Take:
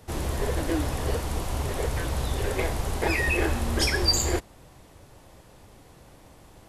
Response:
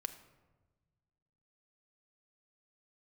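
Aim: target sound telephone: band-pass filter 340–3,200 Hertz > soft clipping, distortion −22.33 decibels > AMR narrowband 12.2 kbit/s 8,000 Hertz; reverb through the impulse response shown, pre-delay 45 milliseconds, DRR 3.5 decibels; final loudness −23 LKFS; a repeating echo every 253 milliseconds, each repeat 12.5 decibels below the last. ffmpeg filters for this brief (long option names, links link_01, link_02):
-filter_complex "[0:a]aecho=1:1:253|506|759:0.237|0.0569|0.0137,asplit=2[link_01][link_02];[1:a]atrim=start_sample=2205,adelay=45[link_03];[link_02][link_03]afir=irnorm=-1:irlink=0,volume=-2dB[link_04];[link_01][link_04]amix=inputs=2:normalize=0,highpass=340,lowpass=3200,asoftclip=threshold=-17dB,volume=8.5dB" -ar 8000 -c:a libopencore_amrnb -b:a 12200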